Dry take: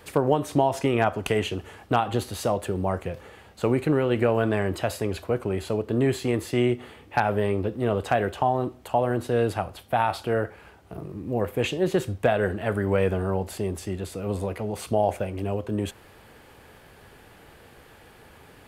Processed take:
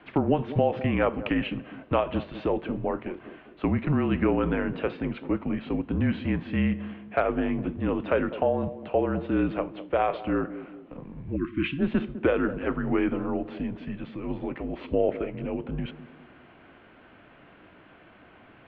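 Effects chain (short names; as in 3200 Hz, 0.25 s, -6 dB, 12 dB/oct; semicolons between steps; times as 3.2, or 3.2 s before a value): mistuned SSB -160 Hz 230–3300 Hz; narrowing echo 0.203 s, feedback 47%, band-pass 310 Hz, level -11.5 dB; spectral delete 11.36–11.79, 380–1000 Hz; gain -1 dB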